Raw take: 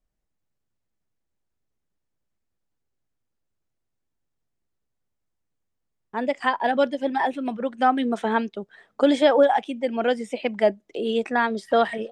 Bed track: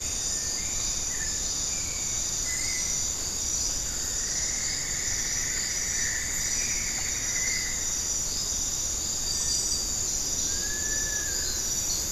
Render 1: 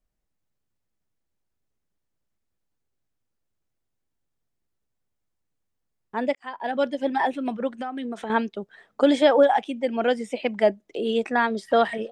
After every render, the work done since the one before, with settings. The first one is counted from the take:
0:06.35–0:07.00: fade in
0:07.75–0:08.30: downward compressor, threshold −28 dBFS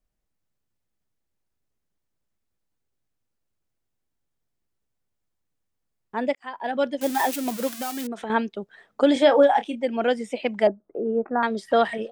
0:07.01–0:08.07: spike at every zero crossing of −20 dBFS
0:09.13–0:09.76: double-tracking delay 28 ms −10 dB
0:10.67–0:11.43: elliptic low-pass filter 1,400 Hz, stop band 80 dB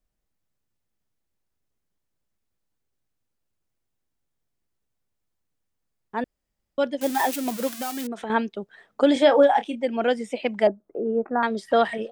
0:06.24–0:06.78: fill with room tone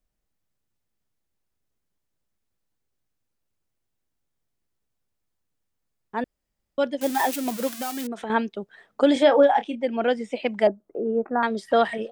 0:09.23–0:10.33: high-frequency loss of the air 65 metres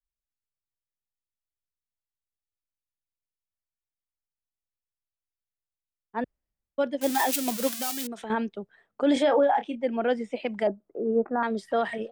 brickwall limiter −15.5 dBFS, peak gain reduction 9 dB
multiband upward and downward expander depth 70%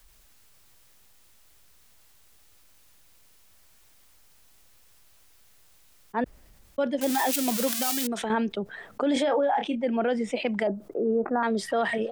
brickwall limiter −18 dBFS, peak gain reduction 5.5 dB
envelope flattener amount 50%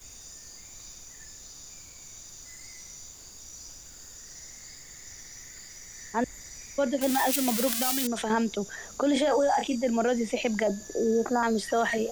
mix in bed track −17 dB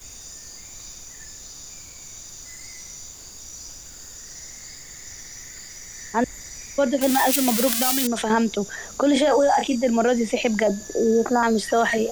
level +6 dB

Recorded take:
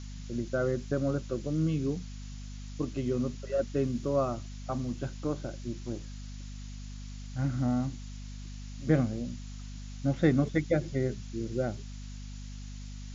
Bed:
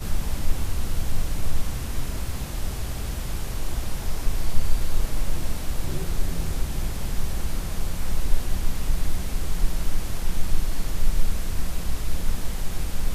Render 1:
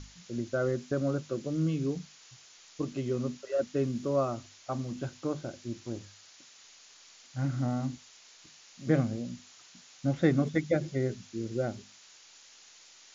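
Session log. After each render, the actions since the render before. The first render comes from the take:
mains-hum notches 50/100/150/200/250 Hz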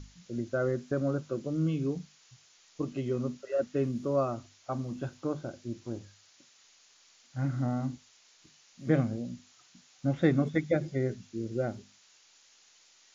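noise reduction from a noise print 6 dB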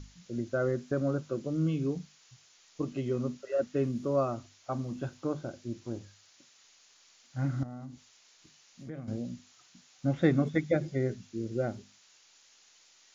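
0:07.63–0:09.08: downward compressor 3 to 1, threshold −43 dBFS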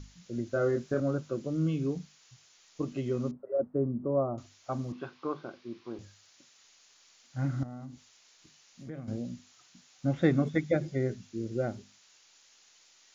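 0:00.50–0:01.00: double-tracking delay 26 ms −4 dB
0:03.31–0:04.38: low-pass filter 1,000 Hz 24 dB per octave
0:04.92–0:05.99: loudspeaker in its box 250–4,600 Hz, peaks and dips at 280 Hz −3 dB, 410 Hz +3 dB, 580 Hz −7 dB, 1,100 Hz +9 dB, 2,300 Hz +3 dB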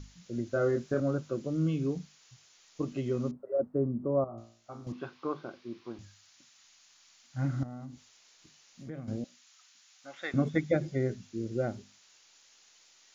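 0:04.24–0:04.87: tuned comb filter 57 Hz, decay 0.51 s, mix 90%
0:05.91–0:07.39: parametric band 450 Hz −14.5 dB → −8 dB 0.72 octaves
0:09.24–0:10.34: high-pass filter 1,100 Hz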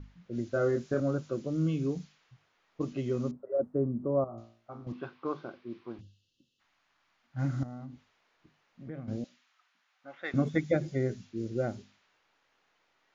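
low-pass that shuts in the quiet parts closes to 1,500 Hz, open at −27 dBFS
0:06.01–0:06.60: gain on a spectral selection 540–2,600 Hz −28 dB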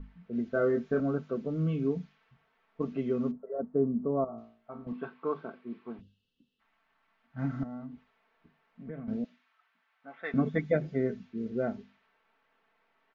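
low-pass filter 2,400 Hz 12 dB per octave
comb filter 4.5 ms, depth 68%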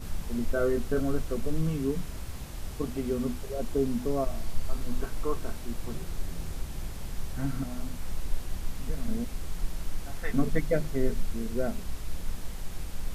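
mix in bed −9 dB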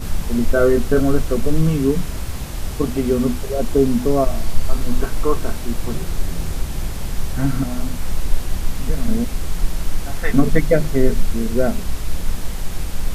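level +12 dB
brickwall limiter −2 dBFS, peak gain reduction 2 dB

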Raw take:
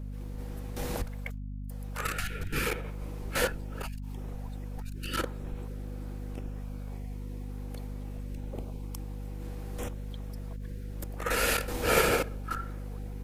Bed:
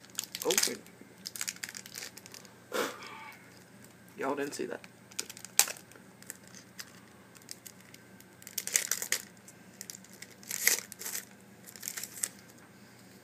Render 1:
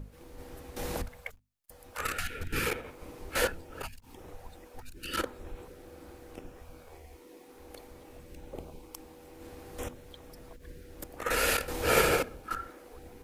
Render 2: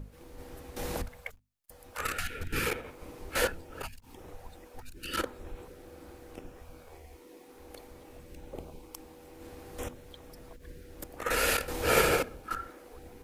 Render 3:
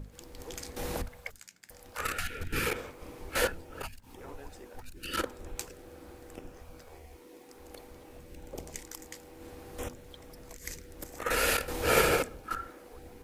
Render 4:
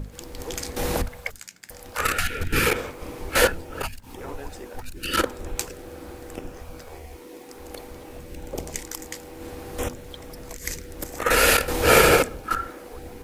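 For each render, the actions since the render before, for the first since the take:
mains-hum notches 50/100/150/200/250 Hz
no processing that can be heard
mix in bed −16 dB
level +10 dB; brickwall limiter −3 dBFS, peak gain reduction 2.5 dB

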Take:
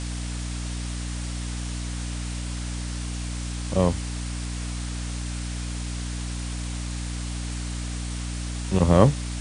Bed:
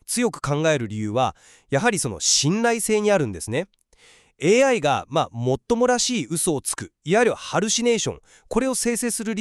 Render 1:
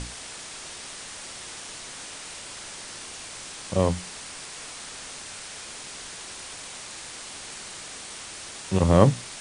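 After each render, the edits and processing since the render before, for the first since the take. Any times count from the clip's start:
mains-hum notches 60/120/180/240/300 Hz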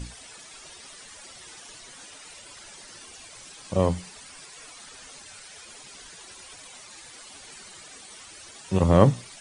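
broadband denoise 12 dB, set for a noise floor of −40 dBFS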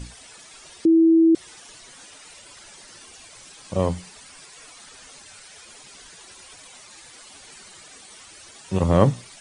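0:00.85–0:01.35: beep over 327 Hz −11.5 dBFS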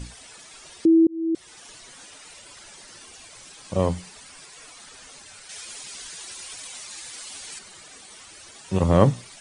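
0:01.07–0:01.66: fade in
0:05.49–0:07.59: high-shelf EQ 2,000 Hz +8.5 dB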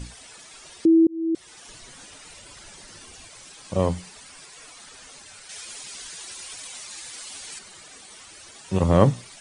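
0:01.67–0:03.28: low-shelf EQ 210 Hz +9 dB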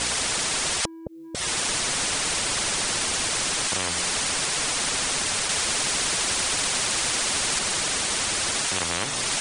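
downward compressor 2 to 1, threshold −26 dBFS, peak gain reduction 9.5 dB
every bin compressed towards the loudest bin 10 to 1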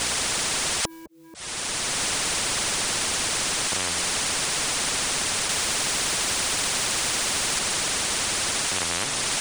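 volume swells 703 ms
every bin compressed towards the loudest bin 2 to 1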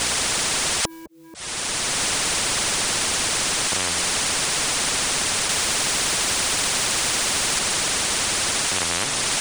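level +3 dB

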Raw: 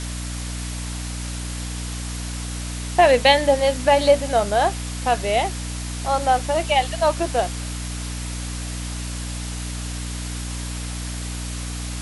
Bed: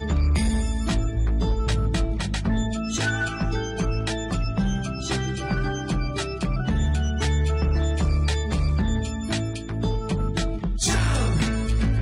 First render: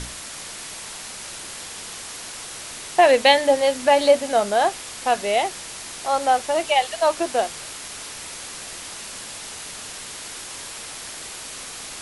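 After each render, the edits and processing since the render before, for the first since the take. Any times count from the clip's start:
mains-hum notches 60/120/180/240/300 Hz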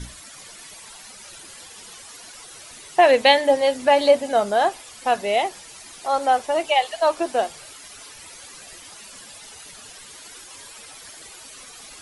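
broadband denoise 12 dB, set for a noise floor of −36 dBFS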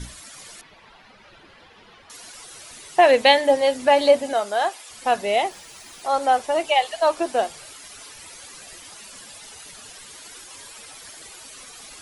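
0:00.61–0:02.10: high-frequency loss of the air 340 metres
0:04.33–0:04.90: high-pass filter 750 Hz 6 dB per octave
0:05.50–0:06.03: running median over 3 samples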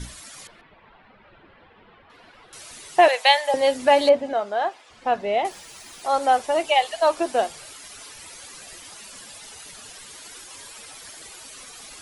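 0:00.47–0:02.53: high-frequency loss of the air 420 metres
0:03.08–0:03.54: Chebyshev high-pass filter 710 Hz, order 3
0:04.09–0:05.45: head-to-tape spacing loss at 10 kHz 23 dB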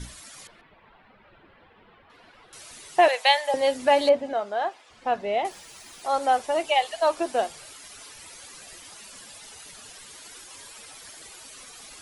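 level −3 dB

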